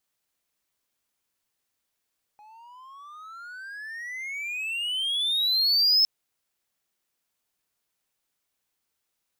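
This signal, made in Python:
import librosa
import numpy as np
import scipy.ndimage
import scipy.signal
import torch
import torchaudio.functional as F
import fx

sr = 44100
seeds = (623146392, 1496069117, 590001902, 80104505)

y = fx.riser_tone(sr, length_s=3.66, level_db=-14.0, wave='triangle', hz=831.0, rise_st=32.0, swell_db=32)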